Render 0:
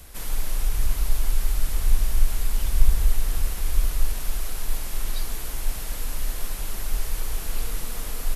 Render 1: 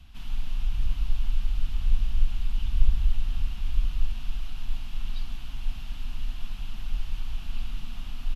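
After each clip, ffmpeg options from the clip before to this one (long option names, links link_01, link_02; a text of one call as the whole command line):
ffmpeg -i in.wav -af "firequalizer=gain_entry='entry(240,0);entry(450,-25);entry(710,-8);entry(1300,-7);entry(2000,-11);entry(2800,2);entry(4100,-7);entry(8600,-24)':delay=0.05:min_phase=1,volume=-3dB" out.wav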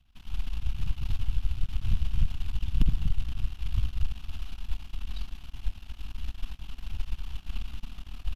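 ffmpeg -i in.wav -filter_complex "[0:a]asplit=2[link_01][link_02];[link_02]aeval=exprs='clip(val(0),-1,0.168)':channel_layout=same,volume=-8.5dB[link_03];[link_01][link_03]amix=inputs=2:normalize=0,aeval=exprs='0.562*(cos(1*acos(clip(val(0)/0.562,-1,1)))-cos(1*PI/2))+0.112*(cos(3*acos(clip(val(0)/0.562,-1,1)))-cos(3*PI/2))+0.0501*(cos(7*acos(clip(val(0)/0.562,-1,1)))-cos(7*PI/2))+0.0891*(cos(8*acos(clip(val(0)/0.562,-1,1)))-cos(8*PI/2))':channel_layout=same,volume=-5dB" out.wav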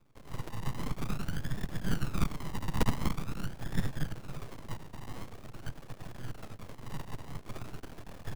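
ffmpeg -i in.wav -af "acrusher=samples=36:mix=1:aa=0.000001:lfo=1:lforange=21.6:lforate=0.46,highpass=frequency=59:width=0.5412,highpass=frequency=59:width=1.3066,aeval=exprs='abs(val(0))':channel_layout=same,volume=4.5dB" out.wav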